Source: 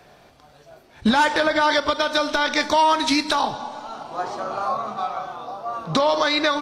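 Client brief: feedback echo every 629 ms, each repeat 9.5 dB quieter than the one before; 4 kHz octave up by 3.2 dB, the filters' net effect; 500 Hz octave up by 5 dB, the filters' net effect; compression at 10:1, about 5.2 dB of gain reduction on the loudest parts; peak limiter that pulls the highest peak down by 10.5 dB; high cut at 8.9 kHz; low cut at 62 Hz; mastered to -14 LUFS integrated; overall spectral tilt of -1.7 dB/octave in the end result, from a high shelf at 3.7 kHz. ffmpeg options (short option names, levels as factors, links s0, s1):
-af "highpass=62,lowpass=8900,equalizer=f=500:t=o:g=6.5,highshelf=f=3700:g=-4,equalizer=f=4000:t=o:g=6,acompressor=threshold=0.158:ratio=10,alimiter=limit=0.15:level=0:latency=1,aecho=1:1:629|1258|1887|2516:0.335|0.111|0.0365|0.012,volume=3.76"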